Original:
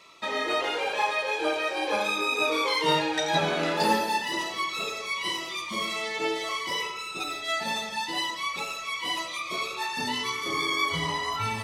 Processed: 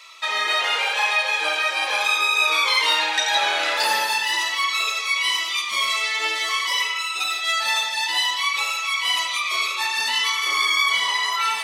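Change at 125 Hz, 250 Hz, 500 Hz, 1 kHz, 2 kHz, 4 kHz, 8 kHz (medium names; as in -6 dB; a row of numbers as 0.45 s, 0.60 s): under -25 dB, -13.5 dB, -4.5 dB, +4.5 dB, +9.0 dB, +9.5 dB, +9.5 dB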